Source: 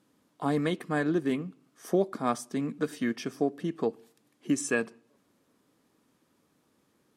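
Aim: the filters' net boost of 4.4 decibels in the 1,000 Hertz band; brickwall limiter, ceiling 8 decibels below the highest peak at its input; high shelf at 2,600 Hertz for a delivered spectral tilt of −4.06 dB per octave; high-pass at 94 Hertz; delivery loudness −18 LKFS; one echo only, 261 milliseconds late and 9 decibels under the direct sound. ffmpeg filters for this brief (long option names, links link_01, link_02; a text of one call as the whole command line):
ffmpeg -i in.wav -af "highpass=94,equalizer=frequency=1000:width_type=o:gain=7.5,highshelf=frequency=2600:gain=-8.5,alimiter=limit=-19dB:level=0:latency=1,aecho=1:1:261:0.355,volume=14dB" out.wav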